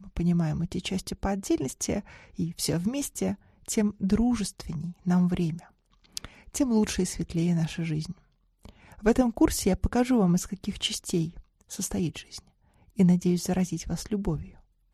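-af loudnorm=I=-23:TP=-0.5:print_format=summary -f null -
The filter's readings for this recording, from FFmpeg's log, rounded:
Input Integrated:    -27.8 LUFS
Input True Peak:      -8.2 dBTP
Input LRA:             3.2 LU
Input Threshold:     -38.7 LUFS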